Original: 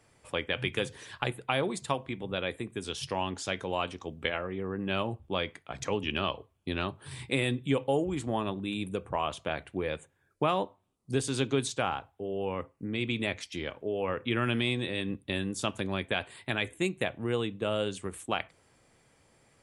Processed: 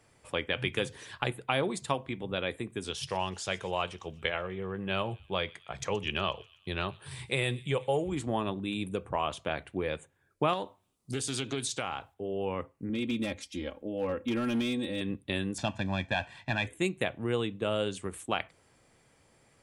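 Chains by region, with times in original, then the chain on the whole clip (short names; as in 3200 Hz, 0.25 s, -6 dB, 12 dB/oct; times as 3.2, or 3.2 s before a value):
2.91–8.12 bell 270 Hz -13.5 dB 0.35 oct + thin delay 0.123 s, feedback 58%, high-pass 2700 Hz, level -18.5 dB
10.53–12.14 high shelf 2100 Hz +8 dB + compressor 3:1, threshold -30 dBFS + Doppler distortion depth 0.18 ms
12.89–15.01 bell 1800 Hz -8.5 dB 2.7 oct + comb 3.7 ms, depth 80% + overloaded stage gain 25 dB
15.58–16.67 CVSD 64 kbps + air absorption 130 m + comb 1.2 ms, depth 76%
whole clip: dry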